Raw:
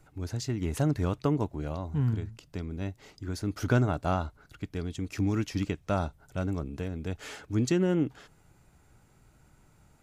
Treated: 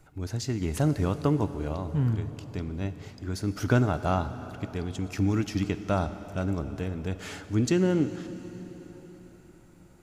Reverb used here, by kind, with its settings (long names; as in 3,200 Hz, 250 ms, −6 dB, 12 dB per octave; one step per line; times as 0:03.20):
dense smooth reverb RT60 4.7 s, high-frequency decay 0.85×, DRR 11 dB
level +2 dB